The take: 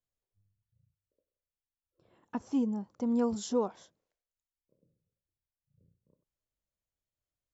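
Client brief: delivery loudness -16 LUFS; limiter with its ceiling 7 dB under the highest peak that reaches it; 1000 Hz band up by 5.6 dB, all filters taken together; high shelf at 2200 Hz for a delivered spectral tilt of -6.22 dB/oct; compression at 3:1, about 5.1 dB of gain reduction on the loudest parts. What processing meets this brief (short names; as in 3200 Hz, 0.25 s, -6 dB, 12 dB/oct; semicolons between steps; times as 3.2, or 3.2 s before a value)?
bell 1000 Hz +8 dB; high shelf 2200 Hz -8 dB; compressor 3:1, threshold -30 dBFS; gain +22 dB; limiter -6 dBFS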